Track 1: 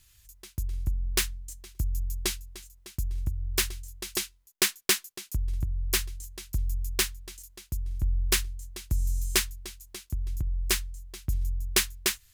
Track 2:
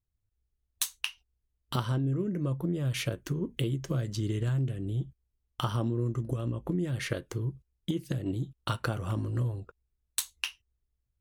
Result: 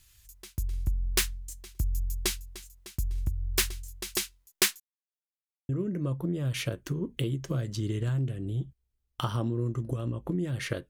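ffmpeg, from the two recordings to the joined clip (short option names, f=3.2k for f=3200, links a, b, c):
-filter_complex "[0:a]apad=whole_dur=10.89,atrim=end=10.89,asplit=2[a][b];[a]atrim=end=4.8,asetpts=PTS-STARTPTS,afade=t=out:st=4.796:d=0.004:c=hsin[c];[b]atrim=start=4.8:end=5.69,asetpts=PTS-STARTPTS,volume=0[d];[1:a]atrim=start=2.09:end=7.29,asetpts=PTS-STARTPTS,afade=t=in:d=0.004:c=hsin[e];[c][d][e]concat=n=3:v=0:a=1"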